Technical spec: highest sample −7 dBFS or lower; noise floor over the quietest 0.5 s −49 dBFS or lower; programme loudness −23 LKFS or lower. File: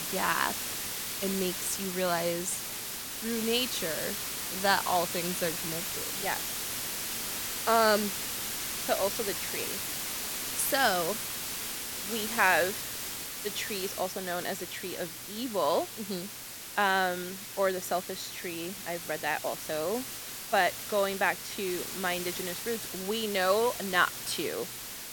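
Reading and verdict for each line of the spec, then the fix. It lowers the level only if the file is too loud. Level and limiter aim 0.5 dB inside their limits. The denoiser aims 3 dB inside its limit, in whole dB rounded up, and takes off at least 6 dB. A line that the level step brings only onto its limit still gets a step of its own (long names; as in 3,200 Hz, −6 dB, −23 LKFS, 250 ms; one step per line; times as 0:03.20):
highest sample −9.0 dBFS: in spec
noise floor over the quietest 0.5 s −43 dBFS: out of spec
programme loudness −30.0 LKFS: in spec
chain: broadband denoise 9 dB, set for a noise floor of −43 dBFS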